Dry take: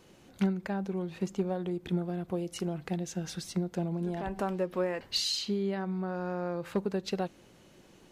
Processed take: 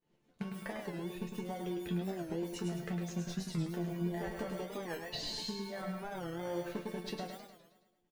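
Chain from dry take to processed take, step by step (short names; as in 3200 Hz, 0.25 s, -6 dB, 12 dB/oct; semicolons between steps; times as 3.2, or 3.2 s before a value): in parallel at -5 dB: sample-and-hold 34×; on the sum: expander -42 dBFS; on a send at -8.5 dB: RIAA curve recording + reverb, pre-delay 80 ms; on the sum: reverb removal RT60 1.9 s; limiter -23 dBFS, peak gain reduction 6.5 dB; compressor, threshold -35 dBFS, peak gain reduction 9 dB; high shelf 6200 Hz -11.5 dB; resonator bank D3 minor, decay 0.2 s; feedback echo 0.105 s, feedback 54%, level -6.5 dB; record warp 45 rpm, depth 160 cents; gain +12.5 dB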